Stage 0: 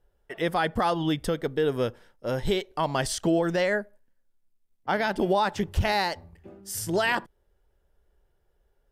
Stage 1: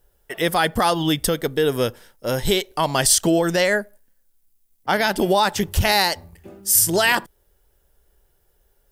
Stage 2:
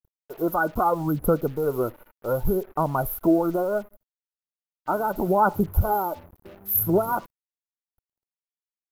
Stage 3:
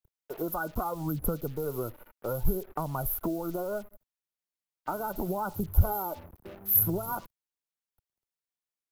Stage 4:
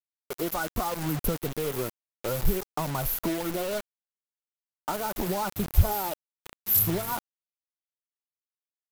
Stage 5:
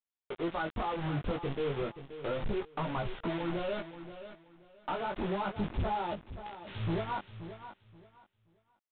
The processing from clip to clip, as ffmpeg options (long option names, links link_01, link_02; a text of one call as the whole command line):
ffmpeg -i in.wav -af "aemphasis=mode=production:type=75kf,volume=5dB" out.wav
ffmpeg -i in.wav -af "afftfilt=real='re*(1-between(b*sr/4096,1500,11000))':imag='im*(1-between(b*sr/4096,1500,11000))':win_size=4096:overlap=0.75,aphaser=in_gain=1:out_gain=1:delay=3.4:decay=0.49:speed=0.72:type=sinusoidal,acrusher=bits=6:mix=0:aa=0.5,volume=-4dB" out.wav
ffmpeg -i in.wav -filter_complex "[0:a]acrossover=split=120|3000[link_01][link_02][link_03];[link_02]acompressor=threshold=-31dB:ratio=6[link_04];[link_01][link_04][link_03]amix=inputs=3:normalize=0" out.wav
ffmpeg -i in.wav -filter_complex "[0:a]acrossover=split=670[link_01][link_02];[link_02]aeval=exprs='0.15*(abs(mod(val(0)/0.15+3,4)-2)-1)':channel_layout=same[link_03];[link_01][link_03]amix=inputs=2:normalize=0,acrusher=bits=5:mix=0:aa=0.000001,volume=2dB" out.wav
ffmpeg -i in.wav -af "flanger=delay=17:depth=4.8:speed=0.31,aresample=8000,asoftclip=type=hard:threshold=-28dB,aresample=44100,aecho=1:1:528|1056|1584:0.251|0.0578|0.0133" out.wav